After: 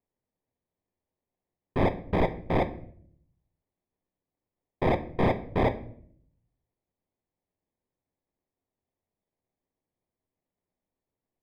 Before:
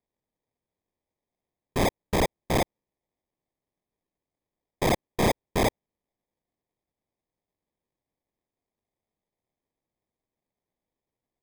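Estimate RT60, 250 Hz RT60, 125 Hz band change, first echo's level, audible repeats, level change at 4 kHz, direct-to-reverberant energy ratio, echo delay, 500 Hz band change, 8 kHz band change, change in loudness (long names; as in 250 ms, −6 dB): 0.60 s, 0.90 s, +1.0 dB, no echo audible, no echo audible, −11.0 dB, 8.0 dB, no echo audible, −0.5 dB, below −25 dB, −1.0 dB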